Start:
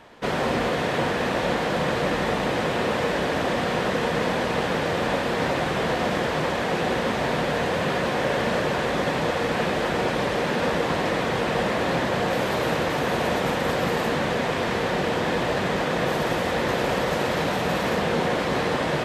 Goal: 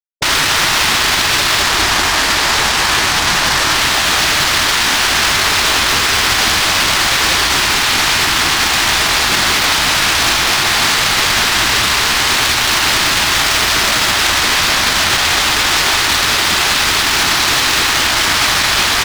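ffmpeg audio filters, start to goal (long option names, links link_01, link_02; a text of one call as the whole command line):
ffmpeg -i in.wav -filter_complex "[0:a]asettb=1/sr,asplit=3[link_01][link_02][link_03];[link_01]atrim=end=1.624[link_04];[link_02]atrim=start=1.62:end=3.75,asetpts=PTS-STARTPTS,afade=type=in:duration=0.004:curve=qsin,afade=type=out:start_time=2.126:duration=0.004:curve=qsin,highshelf=frequency=2100:gain=-7.5[link_05];[link_03]atrim=start=3.746[link_06];[link_04][link_05]acrossfade=duration=0.004:curve1=hsin:curve2=qsin[link_07];[link_07][link_06]acrossfade=duration=0.004:curve1=qsin:curve2=hsin,acrusher=bits=4:mix=0:aa=0.5,asoftclip=type=hard:threshold=-27dB,afftfilt=real='re*lt(hypot(re,im),0.0794)':imag='im*lt(hypot(re,im),0.0794)':win_size=1024:overlap=0.75,equalizer=frequency=4800:width_type=o:width=1.4:gain=7,aecho=1:1:199:0.562,alimiter=level_in=28dB:limit=-1dB:release=50:level=0:latency=1,volume=-3dB" out.wav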